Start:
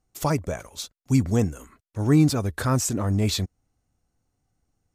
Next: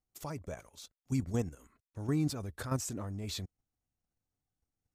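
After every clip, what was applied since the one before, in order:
output level in coarse steps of 10 dB
level −9 dB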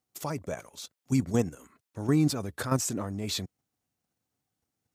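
high-pass filter 130 Hz 12 dB per octave
level +8 dB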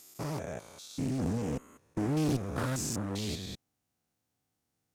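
spectrum averaged block by block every 200 ms
asymmetric clip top −32.5 dBFS
highs frequency-modulated by the lows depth 0.45 ms
level +2.5 dB

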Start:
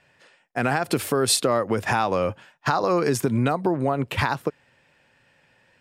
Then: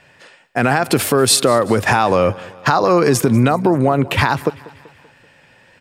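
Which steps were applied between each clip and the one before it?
in parallel at +2.5 dB: brickwall limiter −18.5 dBFS, peak gain reduction 10.5 dB
on the sum: repeating echo 192 ms, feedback 53%, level −21 dB
level +3.5 dB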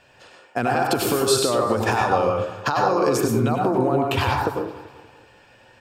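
thirty-one-band graphic EQ 160 Hz −12 dB, 2,000 Hz −10 dB, 10,000 Hz −6 dB
downward compressor, threshold −16 dBFS, peak gain reduction 7 dB
dense smooth reverb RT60 0.57 s, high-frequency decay 0.5×, pre-delay 85 ms, DRR 0 dB
level −3 dB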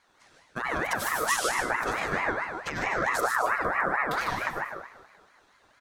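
parametric band 1,600 Hz −11 dB 1.7 octaves
single-tap delay 152 ms −5 dB
ring modulator whose carrier an LFO sweeps 1,200 Hz, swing 30%, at 4.5 Hz
level −4 dB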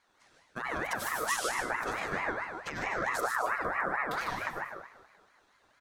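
mains-hum notches 50/100/150 Hz
level −5 dB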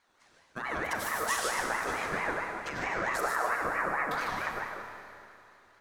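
four-comb reverb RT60 2.7 s, combs from 28 ms, DRR 5 dB

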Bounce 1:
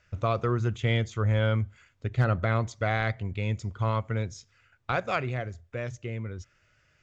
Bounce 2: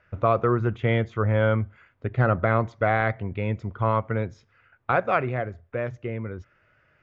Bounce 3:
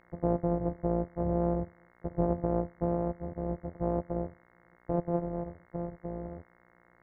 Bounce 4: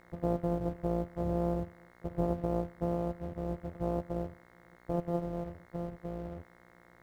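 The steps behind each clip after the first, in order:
low-pass filter 1,700 Hz 12 dB per octave; low-shelf EQ 130 Hz −11 dB; level +7.5 dB
samples sorted by size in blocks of 256 samples; transistor ladder low-pass 750 Hz, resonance 40%; hum with harmonics 60 Hz, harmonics 36, −64 dBFS 0 dB per octave
mu-law and A-law mismatch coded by mu; level −3.5 dB

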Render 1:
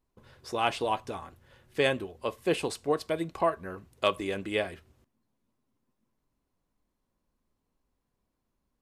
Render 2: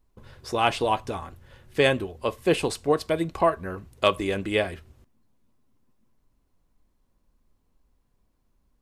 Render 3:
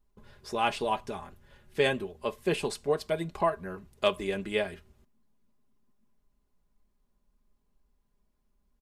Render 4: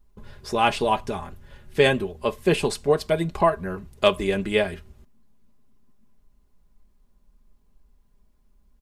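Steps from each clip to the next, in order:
low-shelf EQ 78 Hz +11 dB; level +5 dB
comb filter 4.9 ms, depth 54%; level −6.5 dB
low-shelf EQ 140 Hz +6.5 dB; level +7 dB

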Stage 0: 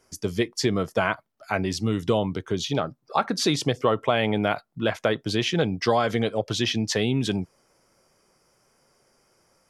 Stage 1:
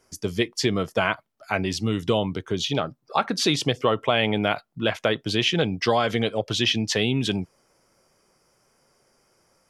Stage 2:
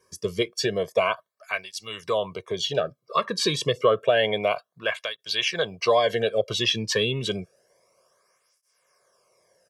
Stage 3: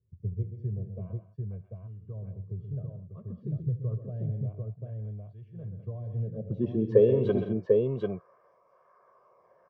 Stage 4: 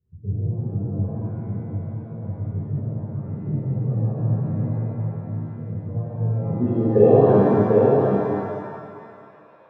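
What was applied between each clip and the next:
dynamic equaliser 2,900 Hz, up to +6 dB, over −45 dBFS, Q 1.7
comb filter 1.8 ms, depth 76%; through-zero flanger with one copy inverted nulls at 0.29 Hz, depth 1.5 ms
low-pass filter sweep 110 Hz → 1,100 Hz, 0:06.17–0:07.41; on a send: multi-tap delay 72/129/170/209/744 ms −15.5/−9.5/−16/−15/−3 dB
Bessel low-pass filter 1,500 Hz, order 2; reverb with rising layers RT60 2 s, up +7 semitones, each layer −8 dB, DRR −9 dB

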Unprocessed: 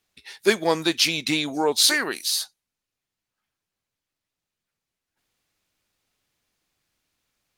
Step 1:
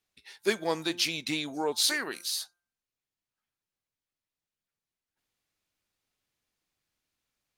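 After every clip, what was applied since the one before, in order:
hum removal 174.9 Hz, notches 9
level −8 dB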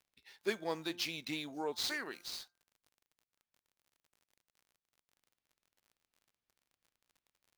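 running median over 5 samples
surface crackle 45 per second −47 dBFS
level −8 dB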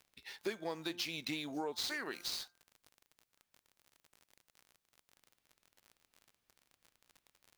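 downward compressor 5 to 1, threshold −46 dBFS, peak gain reduction 15.5 dB
level +9 dB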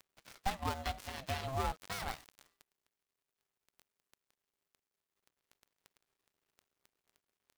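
gap after every zero crossing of 0.21 ms
ring modulation 400 Hz
level +7.5 dB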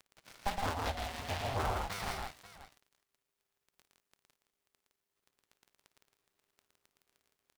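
multi-tap delay 56/115/163/537 ms −15/−4.5/−4.5/−14.5 dB
highs frequency-modulated by the lows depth 0.68 ms

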